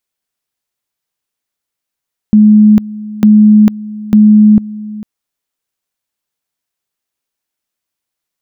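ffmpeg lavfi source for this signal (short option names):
-f lavfi -i "aevalsrc='pow(10,(-1.5-19*gte(mod(t,0.9),0.45))/20)*sin(2*PI*212*t)':d=2.7:s=44100"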